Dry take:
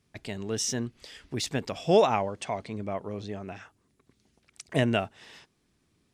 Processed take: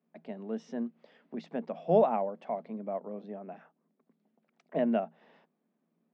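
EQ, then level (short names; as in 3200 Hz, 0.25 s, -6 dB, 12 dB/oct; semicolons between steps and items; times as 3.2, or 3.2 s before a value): rippled Chebyshev high-pass 160 Hz, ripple 9 dB; tape spacing loss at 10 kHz 44 dB; +2.5 dB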